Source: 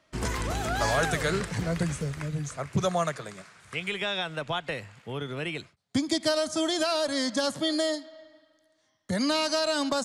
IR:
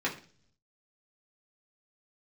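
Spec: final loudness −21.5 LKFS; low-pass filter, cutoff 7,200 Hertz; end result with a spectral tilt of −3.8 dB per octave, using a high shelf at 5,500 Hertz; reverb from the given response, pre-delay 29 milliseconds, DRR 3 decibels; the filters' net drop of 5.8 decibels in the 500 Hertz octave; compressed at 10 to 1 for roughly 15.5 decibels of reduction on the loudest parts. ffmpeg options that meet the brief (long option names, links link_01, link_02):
-filter_complex "[0:a]lowpass=7200,equalizer=frequency=500:width_type=o:gain=-8,highshelf=frequency=5500:gain=-7,acompressor=threshold=-39dB:ratio=10,asplit=2[link_01][link_02];[1:a]atrim=start_sample=2205,adelay=29[link_03];[link_02][link_03]afir=irnorm=-1:irlink=0,volume=-11dB[link_04];[link_01][link_04]amix=inputs=2:normalize=0,volume=20dB"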